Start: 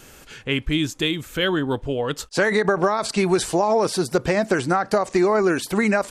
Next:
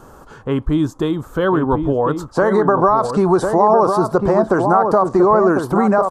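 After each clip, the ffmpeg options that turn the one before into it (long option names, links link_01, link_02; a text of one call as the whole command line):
ffmpeg -i in.wav -filter_complex "[0:a]highshelf=frequency=1600:width_type=q:width=3:gain=-13,asplit=2[link_01][link_02];[link_02]adelay=1050,volume=-6dB,highshelf=frequency=4000:gain=-23.6[link_03];[link_01][link_03]amix=inputs=2:normalize=0,asplit=2[link_04][link_05];[link_05]alimiter=limit=-14.5dB:level=0:latency=1:release=34,volume=-0.5dB[link_06];[link_04][link_06]amix=inputs=2:normalize=0" out.wav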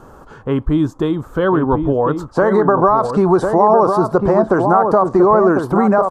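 ffmpeg -i in.wav -af "highshelf=frequency=3700:gain=-8,volume=1.5dB" out.wav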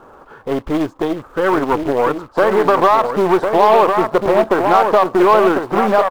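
ffmpeg -i in.wav -af "aeval=exprs='0.891*(cos(1*acos(clip(val(0)/0.891,-1,1)))-cos(1*PI/2))+0.0794*(cos(8*acos(clip(val(0)/0.891,-1,1)))-cos(8*PI/2))':channel_layout=same,acrusher=bits=4:mode=log:mix=0:aa=0.000001,bass=frequency=250:gain=-12,treble=frequency=4000:gain=-14,volume=1dB" out.wav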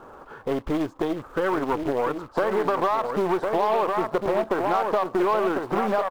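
ffmpeg -i in.wav -af "acompressor=threshold=-21dB:ratio=2.5,volume=-2.5dB" out.wav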